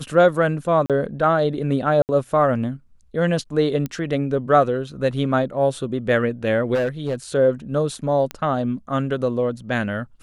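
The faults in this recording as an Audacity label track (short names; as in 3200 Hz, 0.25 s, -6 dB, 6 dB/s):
0.860000	0.900000	gap 37 ms
2.020000	2.090000	gap 69 ms
3.860000	3.860000	pop -14 dBFS
6.740000	7.150000	clipped -18 dBFS
8.310000	8.310000	pop -13 dBFS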